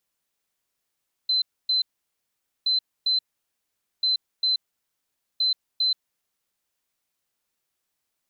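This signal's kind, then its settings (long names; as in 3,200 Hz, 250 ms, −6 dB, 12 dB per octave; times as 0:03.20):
beeps in groups sine 4,060 Hz, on 0.13 s, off 0.27 s, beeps 2, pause 0.84 s, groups 4, −19 dBFS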